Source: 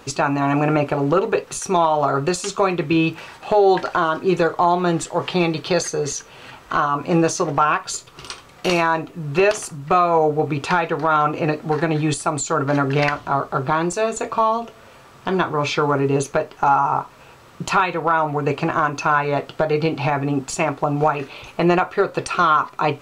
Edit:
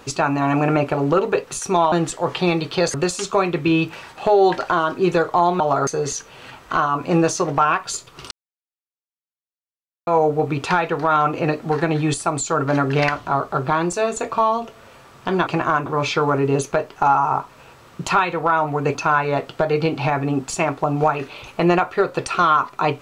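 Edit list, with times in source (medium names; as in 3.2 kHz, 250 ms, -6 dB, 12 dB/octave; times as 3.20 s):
1.92–2.19 s: swap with 4.85–5.87 s
8.31–10.07 s: mute
18.56–18.95 s: move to 15.47 s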